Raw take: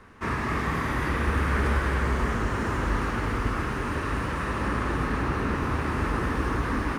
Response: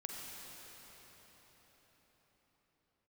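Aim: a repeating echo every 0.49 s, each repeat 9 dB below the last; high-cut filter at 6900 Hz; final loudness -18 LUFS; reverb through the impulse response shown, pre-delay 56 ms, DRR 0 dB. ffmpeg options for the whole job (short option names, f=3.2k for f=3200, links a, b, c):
-filter_complex "[0:a]lowpass=6.9k,aecho=1:1:490|980|1470|1960:0.355|0.124|0.0435|0.0152,asplit=2[a][b];[1:a]atrim=start_sample=2205,adelay=56[c];[b][c]afir=irnorm=-1:irlink=0,volume=0.5dB[d];[a][d]amix=inputs=2:normalize=0,volume=6dB"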